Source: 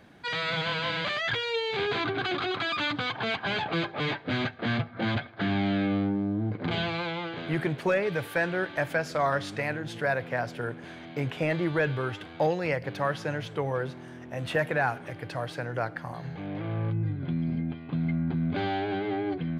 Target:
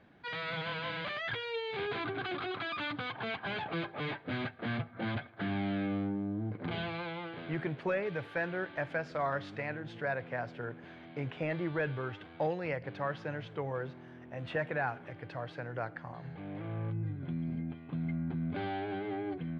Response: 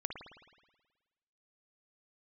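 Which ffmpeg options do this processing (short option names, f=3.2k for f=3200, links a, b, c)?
-af "lowpass=3.3k,volume=-7dB"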